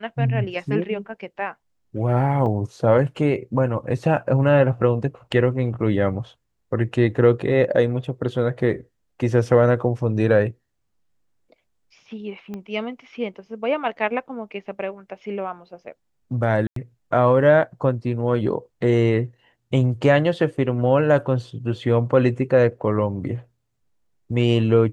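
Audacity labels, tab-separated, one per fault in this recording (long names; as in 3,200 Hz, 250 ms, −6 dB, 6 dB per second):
2.460000	2.460000	drop-out 2.6 ms
12.540000	12.540000	click −21 dBFS
16.670000	16.760000	drop-out 93 ms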